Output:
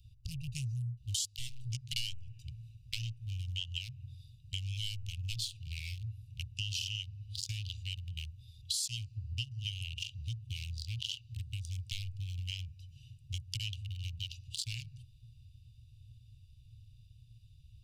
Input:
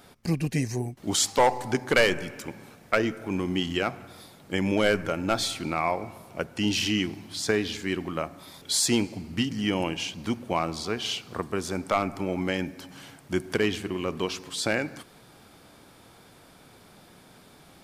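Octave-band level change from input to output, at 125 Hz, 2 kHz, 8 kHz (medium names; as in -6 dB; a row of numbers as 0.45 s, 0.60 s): -3.5 dB, -18.0 dB, -10.5 dB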